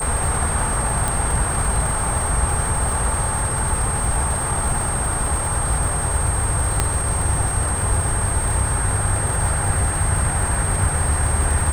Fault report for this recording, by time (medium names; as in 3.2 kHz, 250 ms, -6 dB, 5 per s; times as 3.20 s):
crackle 320 per s -26 dBFS
whine 8.5 kHz -24 dBFS
1.08 s: pop
6.80 s: pop -3 dBFS